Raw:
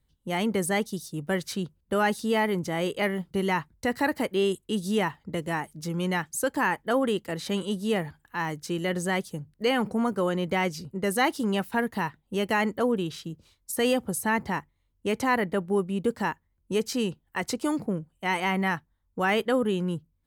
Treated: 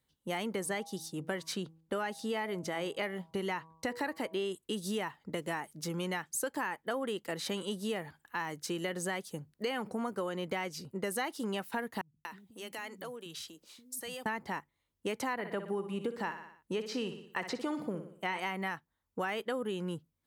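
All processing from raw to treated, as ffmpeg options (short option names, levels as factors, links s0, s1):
-filter_complex "[0:a]asettb=1/sr,asplit=3[s0][s1][s2];[s0]atrim=end=0.554[s3];[s1]atrim=start=0.55:end=4.57,asetpts=PTS-STARTPTS,afade=t=in:d=0.004:c=qsin,afade=t=out:st=4.016:d=0.004:c=qsin,highshelf=f=11000:g=-8,bandreject=f=161.5:t=h:w=4,bandreject=f=323:t=h:w=4,bandreject=f=484.5:t=h:w=4,bandreject=f=646:t=h:w=4,bandreject=f=807.5:t=h:w=4,bandreject=f=969:t=h:w=4,bandreject=f=1130.5:t=h:w=4[s4];[s2]atrim=start=4.566[s5];[s3][s4]acrossfade=d=0.004:c1=hsin:c2=qsin[s6];[s6][s5]acrossfade=d=0.004:c1=qsin:c2=hsin,asettb=1/sr,asplit=3[s7][s8][s9];[s7]atrim=end=12.014[s10];[s8]atrim=start=12.01:end=14.26,asetpts=PTS-STARTPTS,afade=t=in:d=0.004:c=qsin,afade=t=out:st=2.246:d=0.004:c=qsin,highshelf=f=2400:g=9.5,acompressor=threshold=0.00891:ratio=4:attack=3.2:release=140:knee=1:detection=peak,acrossover=split=220[s11][s12];[s12]adelay=240[s13];[s11][s13]amix=inputs=2:normalize=0,atrim=end_sample=99225[s14];[s9]atrim=start=14.256[s15];[s10][s14]acrossfade=d=0.004:c1=hsin:c2=qsin[s16];[s16][s15]acrossfade=d=0.004:c1=qsin:c2=hsin,asettb=1/sr,asplit=3[s17][s18][s19];[s17]atrim=end=15.334[s20];[s18]atrim=start=15.33:end=18.39,asetpts=PTS-STARTPTS,afade=t=in:d=0.004:c=qsin,afade=t=out:st=3.056:d=0.004:c=qsin,acrossover=split=5000[s21][s22];[s22]acompressor=threshold=0.00158:ratio=4:attack=1:release=60[s23];[s21][s23]amix=inputs=2:normalize=0,aecho=1:1:60|120|180|240|300:0.282|0.132|0.0623|0.0293|0.0138,atrim=end_sample=134946[s24];[s19]atrim=start=18.386[s25];[s20][s24]acrossfade=d=0.004:c1=hsin:c2=qsin[s26];[s26][s25]acrossfade=d=0.004:c1=qsin:c2=hsin,highpass=f=320:p=1,acompressor=threshold=0.0251:ratio=6"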